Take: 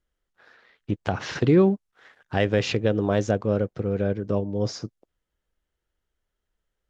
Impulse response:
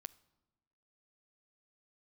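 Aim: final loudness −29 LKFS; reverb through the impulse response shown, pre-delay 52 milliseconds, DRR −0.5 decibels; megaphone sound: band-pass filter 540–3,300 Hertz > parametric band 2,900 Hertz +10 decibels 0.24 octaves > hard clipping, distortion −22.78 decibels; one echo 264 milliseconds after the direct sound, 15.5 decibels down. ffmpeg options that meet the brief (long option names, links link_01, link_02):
-filter_complex "[0:a]aecho=1:1:264:0.168,asplit=2[link_01][link_02];[1:a]atrim=start_sample=2205,adelay=52[link_03];[link_02][link_03]afir=irnorm=-1:irlink=0,volume=6dB[link_04];[link_01][link_04]amix=inputs=2:normalize=0,highpass=540,lowpass=3300,equalizer=frequency=2900:width_type=o:width=0.24:gain=10,asoftclip=type=hard:threshold=-15dB,volume=-2.5dB"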